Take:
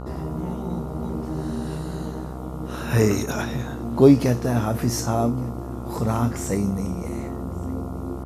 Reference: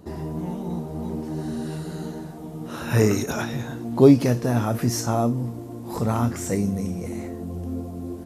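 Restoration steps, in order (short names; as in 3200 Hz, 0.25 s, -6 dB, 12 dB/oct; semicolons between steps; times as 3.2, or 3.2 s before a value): de-hum 64.1 Hz, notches 22; inverse comb 1.164 s -23.5 dB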